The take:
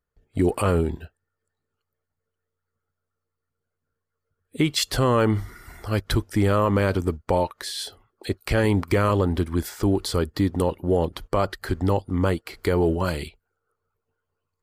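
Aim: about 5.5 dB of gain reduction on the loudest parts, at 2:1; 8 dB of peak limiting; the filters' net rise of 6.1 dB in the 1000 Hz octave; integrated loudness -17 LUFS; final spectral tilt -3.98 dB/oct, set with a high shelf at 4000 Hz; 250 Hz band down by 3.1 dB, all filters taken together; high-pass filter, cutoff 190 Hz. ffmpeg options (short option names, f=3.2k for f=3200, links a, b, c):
-af "highpass=190,equalizer=f=250:t=o:g=-3,equalizer=f=1k:t=o:g=8,highshelf=f=4k:g=-7,acompressor=threshold=-23dB:ratio=2,volume=13dB,alimiter=limit=-3.5dB:level=0:latency=1"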